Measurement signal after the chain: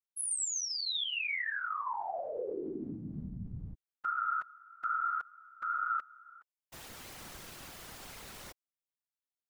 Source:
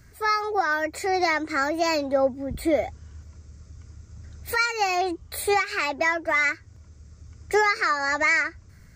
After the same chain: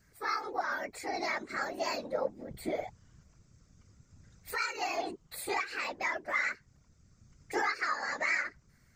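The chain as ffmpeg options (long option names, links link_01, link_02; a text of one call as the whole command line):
ffmpeg -i in.wav -af "lowshelf=frequency=410:gain=-6.5,afftfilt=real='hypot(re,im)*cos(2*PI*random(0))':imag='hypot(re,im)*sin(2*PI*random(1))':win_size=512:overlap=0.75,volume=-3.5dB" out.wav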